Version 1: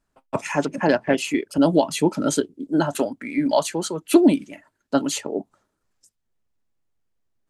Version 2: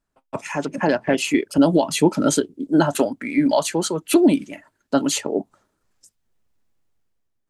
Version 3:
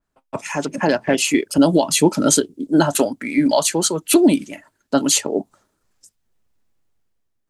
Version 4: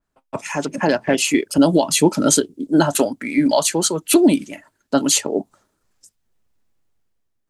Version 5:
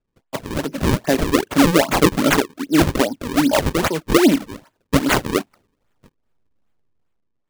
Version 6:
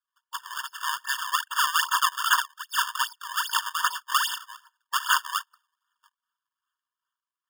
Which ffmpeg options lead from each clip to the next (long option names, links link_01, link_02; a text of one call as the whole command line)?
ffmpeg -i in.wav -af "alimiter=limit=-10dB:level=0:latency=1:release=111,dynaudnorm=framelen=290:gausssize=5:maxgain=10.5dB,volume=-4dB" out.wav
ffmpeg -i in.wav -af "adynamicequalizer=threshold=0.0112:dfrequency=3600:dqfactor=0.7:tfrequency=3600:tqfactor=0.7:attack=5:release=100:ratio=0.375:range=3.5:mode=boostabove:tftype=highshelf,volume=1.5dB" out.wav
ffmpeg -i in.wav -af anull out.wav
ffmpeg -i in.wav -af "acrusher=samples=37:mix=1:aa=0.000001:lfo=1:lforange=59.2:lforate=2.5" out.wav
ffmpeg -i in.wav -af "afftfilt=real='re*eq(mod(floor(b*sr/1024/910),2),1)':imag='im*eq(mod(floor(b*sr/1024/910),2),1)':win_size=1024:overlap=0.75" out.wav